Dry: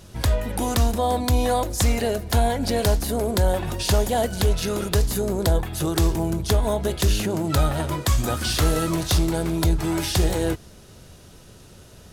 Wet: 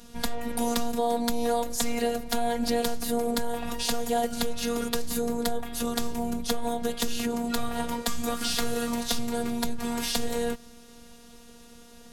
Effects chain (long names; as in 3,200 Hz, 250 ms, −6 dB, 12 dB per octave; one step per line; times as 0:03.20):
downward compressor, threshold −20 dBFS, peak gain reduction 6 dB
phases set to zero 236 Hz